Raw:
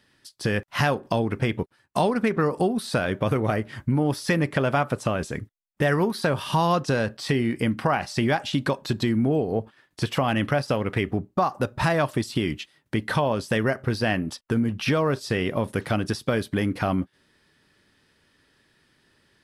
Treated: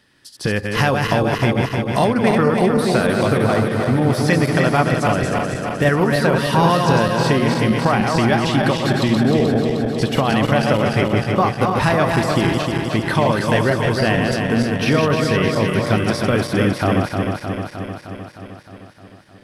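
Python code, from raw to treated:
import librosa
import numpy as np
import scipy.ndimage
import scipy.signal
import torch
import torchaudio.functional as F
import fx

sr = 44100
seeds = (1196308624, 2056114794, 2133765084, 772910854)

y = fx.reverse_delay_fb(x, sr, ms=154, feedback_pct=81, wet_db=-4)
y = y * librosa.db_to_amplitude(4.5)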